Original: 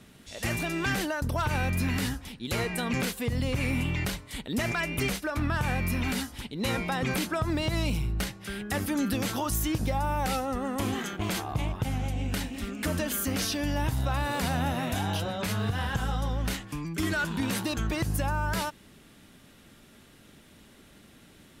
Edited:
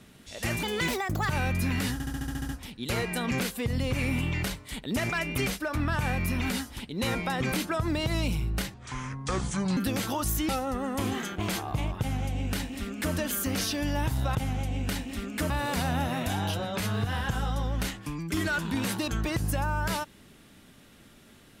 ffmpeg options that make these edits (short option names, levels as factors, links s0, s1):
-filter_complex "[0:a]asplit=16[s0][s1][s2][s3][s4][s5][s6][s7][s8][s9][s10][s11][s12][s13][s14][s15];[s0]atrim=end=0.634[s16];[s1]atrim=start=0.63:end=1.48,asetpts=PTS-STARTPTS,asetrate=56007,aresample=44100[s17];[s2]atrim=start=1.476:end=2.182[s18];[s3]atrim=start=2.108:end=2.182[s19];[s4]atrim=start=2.108:end=2.182[s20];[s5]atrim=start=2.108:end=2.182[s21];[s6]atrim=start=2.108:end=2.182[s22];[s7]atrim=start=2.108:end=2.182[s23];[s8]atrim=start=2.108:end=2.182[s24];[s9]atrim=start=2.108:end=2.182[s25];[s10]atrim=start=2.108:end=8.364[s26];[s11]atrim=start=8.36:end=9.03,asetpts=PTS-STARTPTS,asetrate=28665,aresample=44100[s27];[s12]atrim=start=9.026:end=9.752[s28];[s13]atrim=start=10.298:end=14.162[s29];[s14]atrim=start=11.798:end=12.952[s30];[s15]atrim=start=14.158[s31];[s16][s17]acrossfade=d=0.004:c1=hsin:c2=hsin[s32];[s32][s18]acrossfade=d=0.004:c1=hsin:c2=hsin[s33];[s33][s19]acrossfade=d=0.004:c1=hsin:c2=hsin[s34];[s34][s20]acrossfade=d=0.004:c1=hsin:c2=hsin[s35];[s35][s21]acrossfade=d=0.004:c1=hsin:c2=hsin[s36];[s36][s22]acrossfade=d=0.004:c1=hsin:c2=hsin[s37];[s37][s23]acrossfade=d=0.004:c1=hsin:c2=hsin[s38];[s38][s24]acrossfade=d=0.004:c1=hsin:c2=hsin[s39];[s39][s25]acrossfade=d=0.004:c1=hsin:c2=hsin[s40];[s40][s26]acrossfade=d=0.004:c1=hsin:c2=hsin[s41];[s41][s27]acrossfade=d=0.004:c1=hsin:c2=hsin[s42];[s42][s28]acrossfade=d=0.004:c1=hsin:c2=hsin[s43];[s43][s29]acrossfade=d=0.004:c1=hsin:c2=hsin[s44];[s44][s30]acrossfade=d=0.004:c1=hsin:c2=hsin[s45];[s45][s31]acrossfade=d=0.004:c1=hsin:c2=hsin"